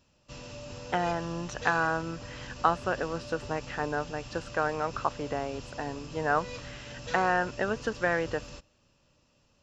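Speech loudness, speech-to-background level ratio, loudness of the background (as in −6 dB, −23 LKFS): −31.0 LKFS, 12.0 dB, −43.0 LKFS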